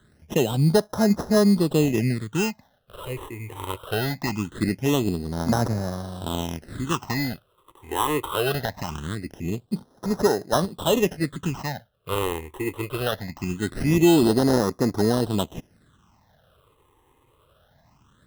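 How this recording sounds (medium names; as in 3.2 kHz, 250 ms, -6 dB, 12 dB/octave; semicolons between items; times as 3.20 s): aliases and images of a low sample rate 2.3 kHz, jitter 0%; phasing stages 8, 0.22 Hz, lowest notch 190–2900 Hz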